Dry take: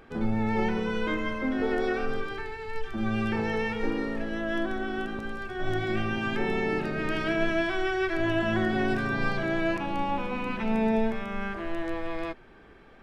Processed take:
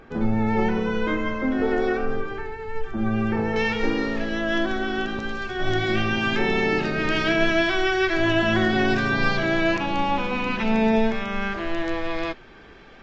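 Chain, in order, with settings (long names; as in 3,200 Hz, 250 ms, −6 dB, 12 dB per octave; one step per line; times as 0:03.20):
parametric band 4,400 Hz −4 dB 2 octaves, from 0:01.97 −10 dB, from 0:03.56 +6.5 dB
level +5 dB
Ogg Vorbis 48 kbit/s 16,000 Hz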